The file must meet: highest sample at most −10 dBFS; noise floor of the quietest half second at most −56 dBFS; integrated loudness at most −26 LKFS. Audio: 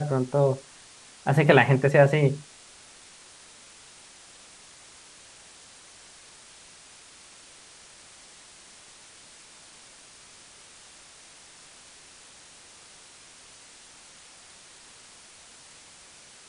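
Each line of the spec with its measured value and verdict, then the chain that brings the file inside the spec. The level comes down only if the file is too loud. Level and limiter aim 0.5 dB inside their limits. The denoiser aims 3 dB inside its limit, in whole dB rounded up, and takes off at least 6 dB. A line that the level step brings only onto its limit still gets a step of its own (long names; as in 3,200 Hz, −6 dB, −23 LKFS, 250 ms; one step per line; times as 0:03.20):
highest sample −3.5 dBFS: out of spec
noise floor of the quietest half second −51 dBFS: out of spec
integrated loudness −22.0 LKFS: out of spec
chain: broadband denoise 6 dB, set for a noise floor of −51 dBFS
level −4.5 dB
brickwall limiter −10.5 dBFS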